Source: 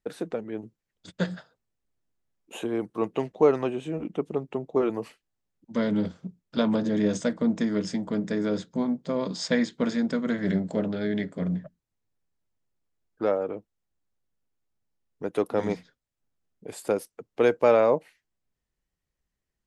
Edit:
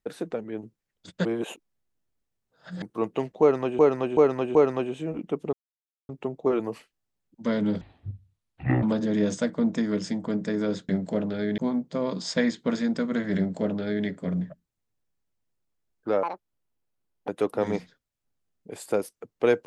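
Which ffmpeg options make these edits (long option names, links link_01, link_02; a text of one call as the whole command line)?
ffmpeg -i in.wav -filter_complex "[0:a]asplit=13[link_01][link_02][link_03][link_04][link_05][link_06][link_07][link_08][link_09][link_10][link_11][link_12][link_13];[link_01]atrim=end=1.252[link_14];[link_02]atrim=start=1.248:end=2.822,asetpts=PTS-STARTPTS,areverse[link_15];[link_03]atrim=start=2.818:end=3.792[link_16];[link_04]atrim=start=3.408:end=3.792[link_17];[link_05]atrim=start=3.408:end=3.792[link_18];[link_06]atrim=start=3.408:end=4.39,asetpts=PTS-STARTPTS,afade=type=out:start_time=0.978:duration=0.004:curve=hsin,apad=pad_dur=0.56[link_19];[link_07]atrim=start=4.39:end=6.114,asetpts=PTS-STARTPTS,afade=type=in:duration=0.004:curve=hsin[link_20];[link_08]atrim=start=6.11:end=6.66,asetpts=PTS-STARTPTS,asetrate=23814,aresample=44100[link_21];[link_09]atrim=start=6.656:end=8.722[link_22];[link_10]atrim=start=10.508:end=11.202[link_23];[link_11]atrim=start=8.718:end=13.374[link_24];[link_12]atrim=start=13.37:end=15.25,asetpts=PTS-STARTPTS,asetrate=78498,aresample=44100[link_25];[link_13]atrim=start=15.246[link_26];[link_14][link_15]acrossfade=duration=0.004:curve1=hsin:curve2=hsin[link_27];[link_27][link_16]acrossfade=duration=0.004:curve1=hsin:curve2=hsin[link_28];[link_28][link_17]acrossfade=duration=0.004:curve1=hsin:curve2=hsin[link_29];[link_29][link_18]acrossfade=duration=0.004:curve1=hsin:curve2=hsin[link_30];[link_19][link_20]concat=n=2:v=0:a=1[link_31];[link_30][link_31]acrossfade=duration=0.004:curve1=hsin:curve2=hsin[link_32];[link_32][link_21]acrossfade=duration=0.004:curve1=hsin:curve2=hsin[link_33];[link_33][link_22]acrossfade=duration=0.004:curve1=hsin:curve2=hsin[link_34];[link_34][link_23]acrossfade=duration=0.004:curve1=hsin:curve2=hsin[link_35];[link_35][link_24]acrossfade=duration=0.004:curve1=hsin:curve2=hsin[link_36];[link_36][link_25]acrossfade=duration=0.004:curve1=hsin:curve2=hsin[link_37];[link_37][link_26]acrossfade=duration=0.004:curve1=hsin:curve2=hsin" out.wav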